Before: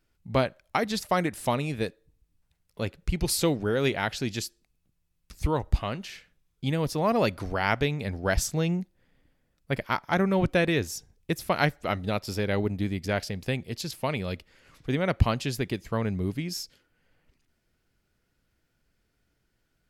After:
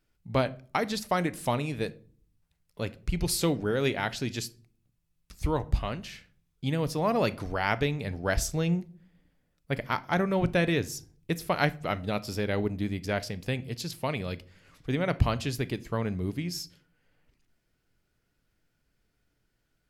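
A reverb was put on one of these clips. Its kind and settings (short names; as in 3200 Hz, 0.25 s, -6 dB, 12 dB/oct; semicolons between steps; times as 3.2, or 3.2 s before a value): shoebox room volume 390 m³, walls furnished, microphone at 0.37 m; gain -2 dB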